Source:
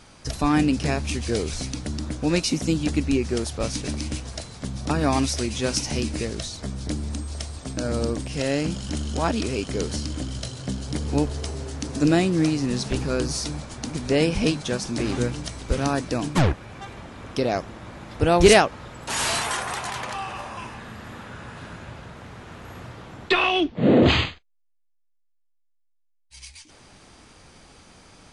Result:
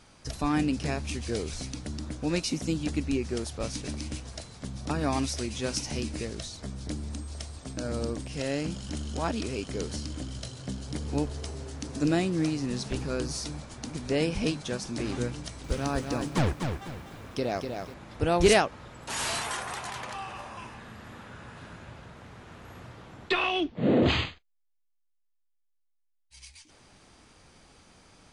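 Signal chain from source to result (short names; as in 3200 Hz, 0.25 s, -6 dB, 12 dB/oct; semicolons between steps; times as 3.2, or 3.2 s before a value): 15.39–17.94 lo-fi delay 0.247 s, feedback 35%, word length 8-bit, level -5.5 dB; gain -6.5 dB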